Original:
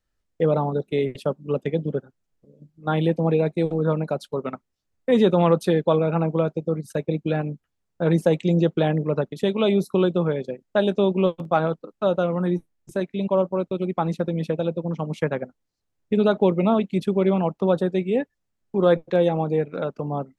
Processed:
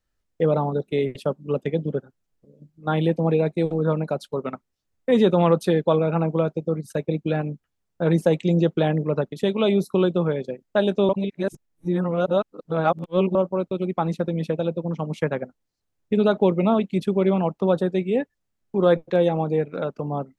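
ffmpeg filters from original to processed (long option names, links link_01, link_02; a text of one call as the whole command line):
ffmpeg -i in.wav -filter_complex "[0:a]asplit=3[link_01][link_02][link_03];[link_01]atrim=end=11.092[link_04];[link_02]atrim=start=11.088:end=13.352,asetpts=PTS-STARTPTS,areverse[link_05];[link_03]atrim=start=13.348[link_06];[link_04][link_05]acrossfade=duration=0.004:curve1=hsin:curve2=hsin[link_07];[link_07][link_06]acrossfade=duration=0.004:curve1=hsin:curve2=hsin" out.wav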